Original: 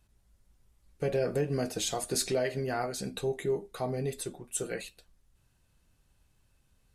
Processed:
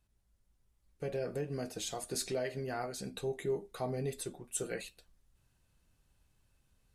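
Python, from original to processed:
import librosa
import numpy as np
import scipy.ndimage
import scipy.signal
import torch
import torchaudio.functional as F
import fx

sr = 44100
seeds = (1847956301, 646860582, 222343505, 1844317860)

y = fx.rider(x, sr, range_db=10, speed_s=2.0)
y = y * librosa.db_to_amplitude(-5.5)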